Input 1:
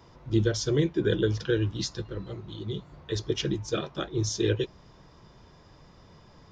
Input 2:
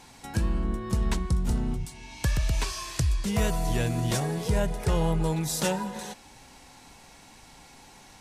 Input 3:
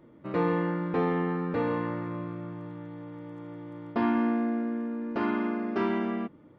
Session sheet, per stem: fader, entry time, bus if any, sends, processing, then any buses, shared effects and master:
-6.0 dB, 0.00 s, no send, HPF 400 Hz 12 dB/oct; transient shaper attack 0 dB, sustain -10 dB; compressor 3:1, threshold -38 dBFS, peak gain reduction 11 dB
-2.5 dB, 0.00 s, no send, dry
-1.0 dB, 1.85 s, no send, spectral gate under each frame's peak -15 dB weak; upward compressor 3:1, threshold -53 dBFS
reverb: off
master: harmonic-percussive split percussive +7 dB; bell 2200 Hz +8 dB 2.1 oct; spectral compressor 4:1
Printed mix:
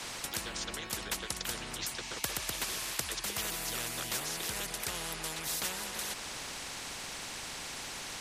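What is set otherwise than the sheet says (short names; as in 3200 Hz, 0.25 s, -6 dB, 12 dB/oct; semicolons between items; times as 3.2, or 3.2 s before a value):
stem 2 -2.5 dB -> -9.0 dB; stem 3: muted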